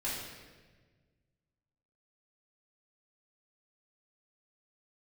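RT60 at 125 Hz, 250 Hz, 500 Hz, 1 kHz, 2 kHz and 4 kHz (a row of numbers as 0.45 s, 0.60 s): 2.3 s, 1.9 s, 1.6 s, 1.2 s, 1.3 s, 1.1 s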